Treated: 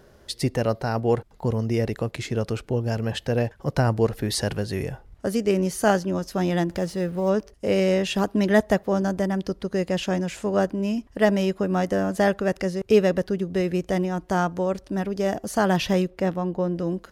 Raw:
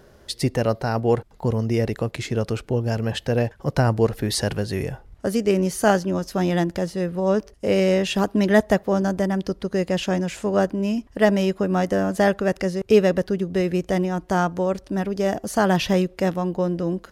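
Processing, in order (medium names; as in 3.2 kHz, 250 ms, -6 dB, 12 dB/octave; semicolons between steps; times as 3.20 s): 6.70–7.30 s: companding laws mixed up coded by mu; 16.10–16.76 s: treble shelf 3.6 kHz -8 dB; trim -2 dB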